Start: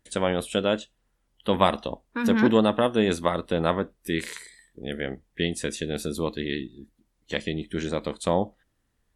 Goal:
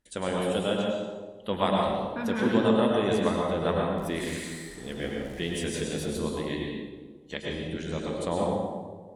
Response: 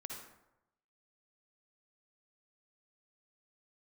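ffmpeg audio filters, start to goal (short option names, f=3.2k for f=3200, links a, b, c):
-filter_complex "[0:a]asettb=1/sr,asplit=3[a][b][c];[a]atrim=end=3.984[d];[b]atrim=start=3.98:end=6.19,asetpts=PTS-STARTPTS,afade=t=in:d=0.004:c=qsin,afade=t=out:st=2.206:d=0.004:c=qsin,aeval=exprs='val(0)+0.5*0.0133*sgn(val(0))':c=same[e];[c]atrim=start=6.186[f];[d][e]acrossfade=d=0.004:c1=hsin:c2=qsin[g];[g][f]acrossfade=d=0.004:c1=qsin:c2=hsin,flanger=delay=4.8:depth=6:regen=-69:speed=1.5:shape=sinusoidal[h];[1:a]atrim=start_sample=2205,asetrate=23373,aresample=44100[i];[h][i]afir=irnorm=-1:irlink=0"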